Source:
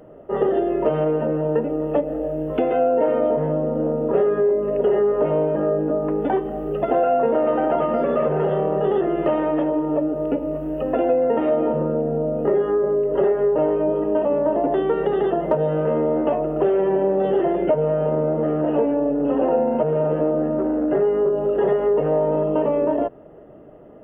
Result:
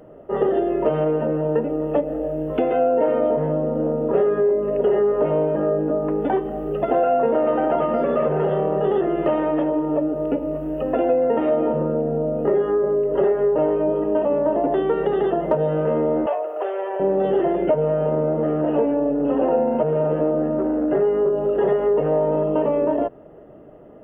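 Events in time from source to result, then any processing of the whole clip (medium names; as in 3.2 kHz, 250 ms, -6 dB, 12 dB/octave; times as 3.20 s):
16.26–17.00 s: high-pass 530 Hz 24 dB/octave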